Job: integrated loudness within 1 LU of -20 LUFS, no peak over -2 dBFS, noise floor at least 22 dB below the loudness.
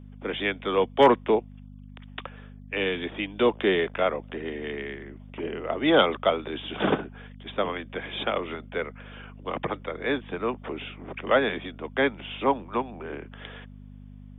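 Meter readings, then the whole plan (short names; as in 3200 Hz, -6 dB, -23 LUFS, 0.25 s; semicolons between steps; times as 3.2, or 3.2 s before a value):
hum 50 Hz; harmonics up to 250 Hz; hum level -42 dBFS; loudness -27.0 LUFS; peak -4.5 dBFS; loudness target -20.0 LUFS
-> de-hum 50 Hz, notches 5; gain +7 dB; limiter -2 dBFS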